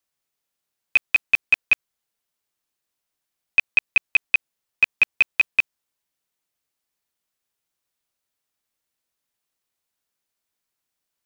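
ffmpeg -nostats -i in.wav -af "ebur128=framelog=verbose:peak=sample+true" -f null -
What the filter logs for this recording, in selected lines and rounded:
Integrated loudness:
  I:         -20.1 LUFS
  Threshold: -30.2 LUFS
Loudness range:
  LRA:         5.2 LU
  Threshold: -43.0 LUFS
  LRA low:   -26.4 LUFS
  LRA high:  -21.1 LUFS
Sample peak:
  Peak:       -8.3 dBFS
True peak:
  Peak:       -8.2 dBFS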